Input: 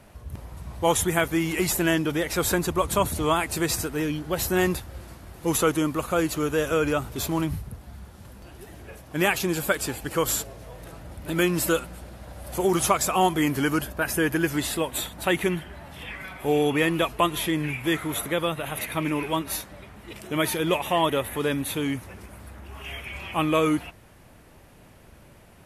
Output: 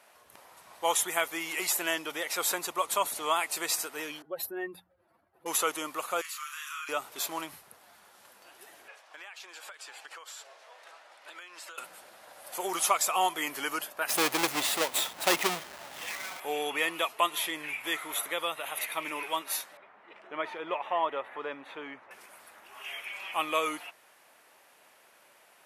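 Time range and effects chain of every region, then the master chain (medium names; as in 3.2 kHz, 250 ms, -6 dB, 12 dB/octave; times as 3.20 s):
4.22–5.46 s: spectral contrast enhancement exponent 2 + peaking EQ 6.8 kHz -11 dB 0.81 oct + hum notches 60/120/180/240 Hz
6.21–6.89 s: elliptic high-pass 1.1 kHz + compression 3:1, threshold -35 dBFS + doubling 34 ms -3.5 dB
8.88–11.78 s: band-pass 610–5700 Hz + compression 20:1, threshold -38 dBFS
14.09–16.40 s: square wave that keeps the level + bass shelf 190 Hz +10.5 dB
19.77–22.11 s: low-pass 1.6 kHz + bass shelf 200 Hz -3 dB
whole clip: high-pass 750 Hz 12 dB/octave; dynamic bell 1.6 kHz, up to -6 dB, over -46 dBFS, Q 6.4; trim -2 dB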